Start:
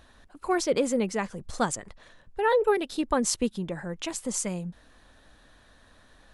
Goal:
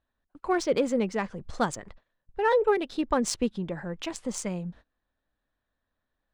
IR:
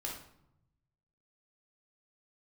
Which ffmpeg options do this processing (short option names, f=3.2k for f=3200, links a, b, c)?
-af "agate=range=-25dB:threshold=-47dB:ratio=16:detection=peak,adynamicsmooth=sensitivity=3:basefreq=4.2k"